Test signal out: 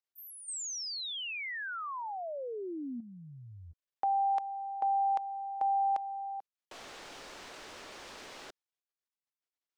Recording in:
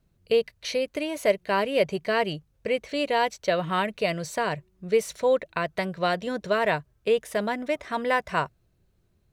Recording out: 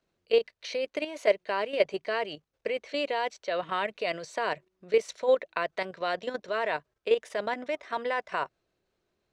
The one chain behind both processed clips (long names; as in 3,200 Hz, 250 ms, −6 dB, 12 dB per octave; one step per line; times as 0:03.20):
three-way crossover with the lows and the highs turned down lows −19 dB, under 290 Hz, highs −21 dB, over 7,300 Hz
output level in coarse steps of 10 dB
level +1.5 dB